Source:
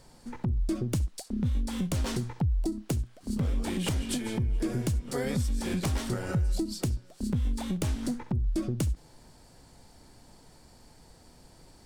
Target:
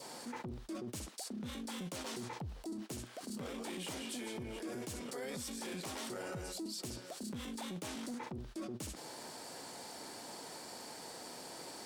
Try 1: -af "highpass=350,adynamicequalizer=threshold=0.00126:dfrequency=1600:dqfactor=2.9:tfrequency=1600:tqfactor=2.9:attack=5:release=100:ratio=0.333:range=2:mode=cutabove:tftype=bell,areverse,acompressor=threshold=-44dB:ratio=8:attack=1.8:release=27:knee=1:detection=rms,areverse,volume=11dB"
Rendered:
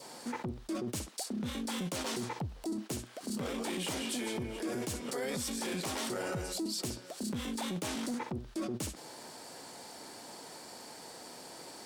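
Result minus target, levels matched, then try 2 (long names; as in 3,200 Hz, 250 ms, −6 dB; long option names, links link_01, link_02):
downward compressor: peak gain reduction −6.5 dB
-af "highpass=350,adynamicequalizer=threshold=0.00126:dfrequency=1600:dqfactor=2.9:tfrequency=1600:tqfactor=2.9:attack=5:release=100:ratio=0.333:range=2:mode=cutabove:tftype=bell,areverse,acompressor=threshold=-51.5dB:ratio=8:attack=1.8:release=27:knee=1:detection=rms,areverse,volume=11dB"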